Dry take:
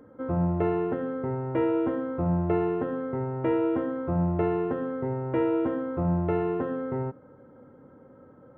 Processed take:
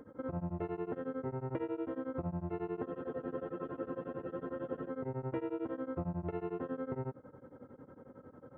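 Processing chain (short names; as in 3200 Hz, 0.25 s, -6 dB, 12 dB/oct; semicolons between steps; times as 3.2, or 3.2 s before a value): compressor 6:1, threshold -34 dBFS, peak gain reduction 13 dB; spectral freeze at 2.86, 2.03 s; beating tremolo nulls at 11 Hz; gain +1 dB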